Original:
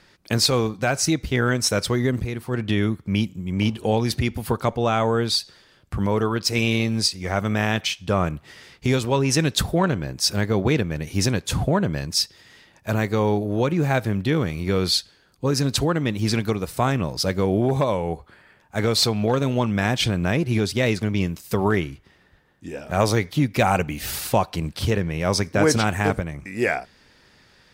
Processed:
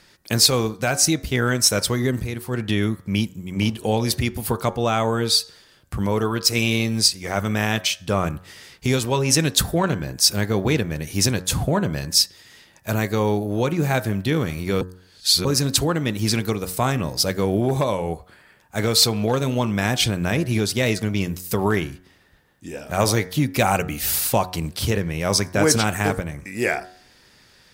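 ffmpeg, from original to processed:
-filter_complex "[0:a]asplit=3[s0][s1][s2];[s0]atrim=end=14.812[s3];[s1]atrim=start=14.808:end=15.452,asetpts=PTS-STARTPTS,areverse[s4];[s2]atrim=start=15.448[s5];[s3][s4]acrossfade=d=0.004:c1=hsin:c2=hsin[s6];[s6][s5]acrossfade=d=0.004:c1=hsin:c2=hsin,highshelf=f=6200:g=11,bandreject=f=91.63:t=h:w=4,bandreject=f=183.26:t=h:w=4,bandreject=f=274.89:t=h:w=4,bandreject=f=366.52:t=h:w=4,bandreject=f=458.15:t=h:w=4,bandreject=f=549.78:t=h:w=4,bandreject=f=641.41:t=h:w=4,bandreject=f=733.04:t=h:w=4,bandreject=f=824.67:t=h:w=4,bandreject=f=916.3:t=h:w=4,bandreject=f=1007.93:t=h:w=4,bandreject=f=1099.56:t=h:w=4,bandreject=f=1191.19:t=h:w=4,bandreject=f=1282.82:t=h:w=4,bandreject=f=1374.45:t=h:w=4,bandreject=f=1466.08:t=h:w=4,bandreject=f=1557.71:t=h:w=4,bandreject=f=1649.34:t=h:w=4,bandreject=f=1740.97:t=h:w=4,bandreject=f=1832.6:t=h:w=4,bandreject=f=1924.23:t=h:w=4"

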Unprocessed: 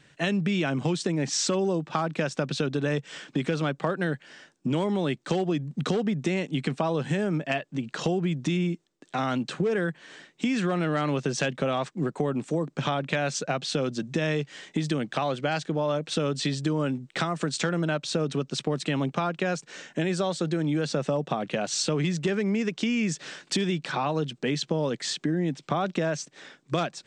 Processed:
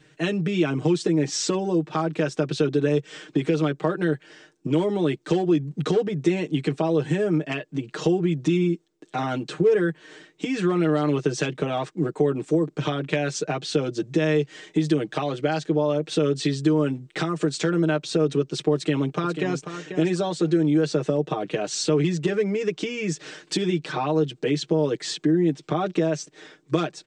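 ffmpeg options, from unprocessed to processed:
-filter_complex "[0:a]asplit=2[s0][s1];[s1]afade=t=in:st=18.74:d=0.01,afade=t=out:st=19.67:d=0.01,aecho=0:1:490|980:0.334965|0.0502448[s2];[s0][s2]amix=inputs=2:normalize=0,equalizer=f=380:w=3.3:g=13,aecho=1:1:6.5:0.86,volume=0.75"

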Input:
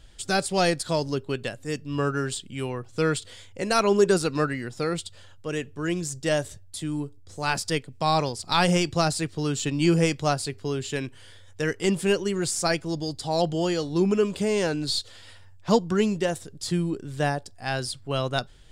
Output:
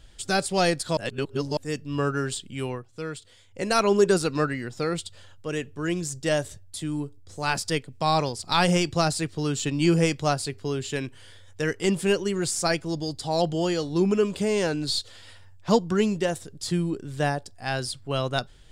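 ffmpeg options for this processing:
-filter_complex "[0:a]asettb=1/sr,asplit=3[s0][s1][s2];[s0]atrim=end=4.334[s3];[s1]atrim=start=4.33:end=4.93,asetpts=PTS-STARTPTS,afade=t=in:d=0.004:c=qsin,afade=t=out:st=0.596:d=0.004:c=qsin,equalizer=f=10000:w=7.6:g=-10[s4];[s2]atrim=start=4.926[s5];[s3][s4]acrossfade=d=0.004:c1=hsin:c2=qsin[s6];[s6][s5]acrossfade=d=0.004:c1=qsin:c2=hsin,asplit=5[s7][s8][s9][s10][s11];[s7]atrim=end=0.972[s12];[s8]atrim=start=0.968:end=1.572,asetpts=PTS-STARTPTS,areverse[s13];[s9]atrim=start=1.568:end=2.9,asetpts=PTS-STARTPTS,afade=t=out:st=1.172:d=0.16:c=qua:silence=0.316228[s14];[s10]atrim=start=2.9:end=3.44,asetpts=PTS-STARTPTS,volume=0.316[s15];[s11]atrim=start=3.44,asetpts=PTS-STARTPTS,afade=t=in:d=0.16:c=qua:silence=0.316228[s16];[s12][s13]acrossfade=d=0.004:c1=hsin:c2=hsin[s17];[s14][s15][s16]concat=n=3:v=0:a=1[s18];[s17][s18]acrossfade=d=0.004:c1=hsin:c2=hsin"

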